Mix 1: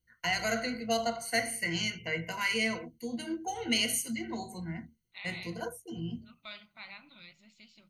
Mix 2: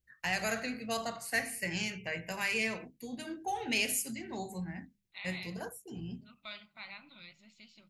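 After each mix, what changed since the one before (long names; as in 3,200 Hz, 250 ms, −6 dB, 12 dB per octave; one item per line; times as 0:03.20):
first voice: remove EQ curve with evenly spaced ripples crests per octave 1.9, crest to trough 16 dB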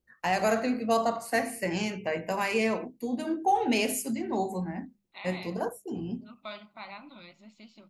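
master: add flat-topped bell 500 Hz +11.5 dB 2.9 octaves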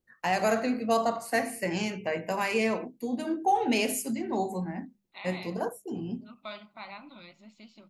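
first voice: add parametric band 65 Hz −9.5 dB 0.45 octaves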